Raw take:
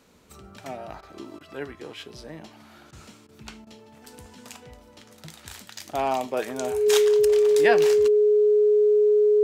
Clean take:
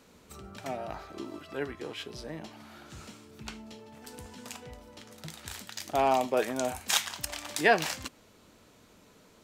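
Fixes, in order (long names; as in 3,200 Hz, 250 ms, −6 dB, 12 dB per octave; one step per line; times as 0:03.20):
notch filter 420 Hz, Q 30
repair the gap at 0:01.01/0:01.39/0:02.91/0:03.27/0:03.65, 16 ms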